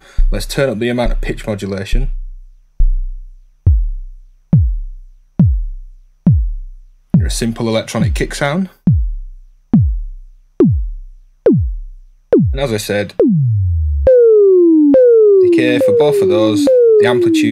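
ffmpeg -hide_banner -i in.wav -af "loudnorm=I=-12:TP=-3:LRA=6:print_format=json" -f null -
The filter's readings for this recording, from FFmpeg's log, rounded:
"input_i" : "-12.3",
"input_tp" : "-2.2",
"input_lra" : "10.1",
"input_thresh" : "-23.2",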